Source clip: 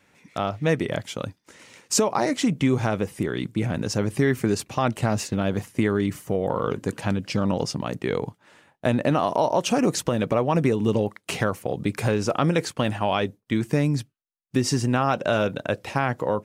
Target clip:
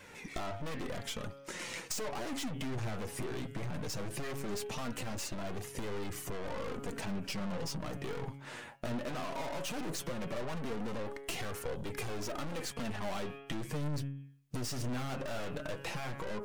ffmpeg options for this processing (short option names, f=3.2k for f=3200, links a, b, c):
-af "bandreject=f=138.5:t=h:w=4,bandreject=f=277:t=h:w=4,bandreject=f=415.5:t=h:w=4,bandreject=f=554:t=h:w=4,bandreject=f=692.5:t=h:w=4,bandreject=f=831:t=h:w=4,bandreject=f=969.5:t=h:w=4,bandreject=f=1.108k:t=h:w=4,bandreject=f=1.2465k:t=h:w=4,bandreject=f=1.385k:t=h:w=4,bandreject=f=1.5235k:t=h:w=4,bandreject=f=1.662k:t=h:w=4,bandreject=f=1.8005k:t=h:w=4,bandreject=f=1.939k:t=h:w=4,bandreject=f=2.0775k:t=h:w=4,bandreject=f=2.216k:t=h:w=4,bandreject=f=2.3545k:t=h:w=4,bandreject=f=2.493k:t=h:w=4,bandreject=f=2.6315k:t=h:w=4,bandreject=f=2.77k:t=h:w=4,bandreject=f=2.9085k:t=h:w=4,bandreject=f=3.047k:t=h:w=4,bandreject=f=3.1855k:t=h:w=4,bandreject=f=3.324k:t=h:w=4,aeval=exprs='(tanh(63.1*val(0)+0.5)-tanh(0.5))/63.1':c=same,acompressor=threshold=-46dB:ratio=12,flanger=delay=1.9:depth=6.8:regen=45:speed=0.17:shape=triangular,volume=14dB"